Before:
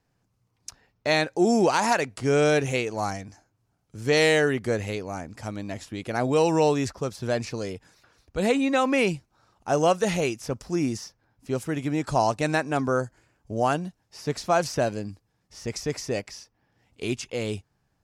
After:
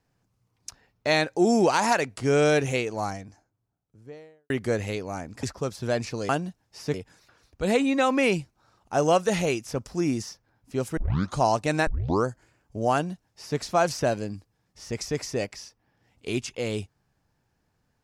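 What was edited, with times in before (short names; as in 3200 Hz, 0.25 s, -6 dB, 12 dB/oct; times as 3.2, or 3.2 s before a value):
2.62–4.5 studio fade out
5.43–6.83 cut
11.72 tape start 0.40 s
12.62 tape start 0.38 s
13.68–14.33 copy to 7.69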